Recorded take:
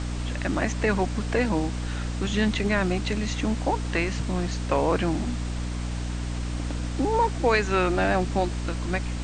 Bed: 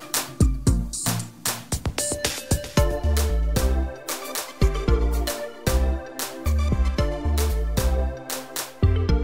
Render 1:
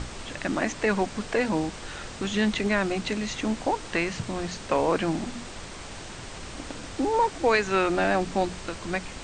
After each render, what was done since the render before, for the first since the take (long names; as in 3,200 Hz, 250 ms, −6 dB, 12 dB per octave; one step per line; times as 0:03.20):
mains-hum notches 60/120/180/240/300 Hz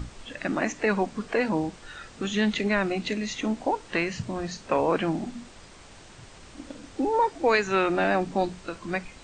noise reduction from a noise print 9 dB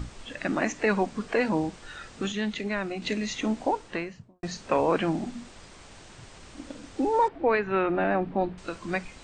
0:02.32–0:03.02: clip gain −5.5 dB
0:03.66–0:04.43: fade out and dull
0:07.28–0:08.58: high-frequency loss of the air 460 metres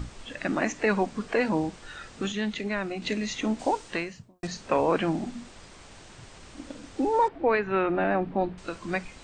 0:03.59–0:04.47: high-shelf EQ 3,300 Hz +10 dB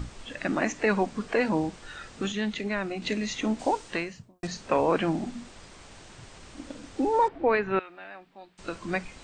0:07.79–0:08.59: first-order pre-emphasis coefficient 0.97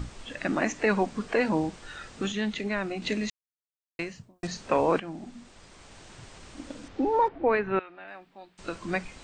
0:03.30–0:03.99: silence
0:05.00–0:06.15: fade in, from −14 dB
0:06.88–0:08.08: high-frequency loss of the air 150 metres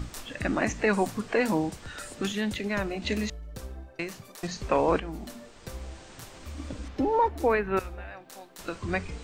mix in bed −18.5 dB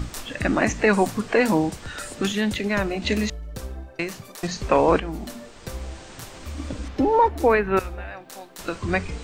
level +6 dB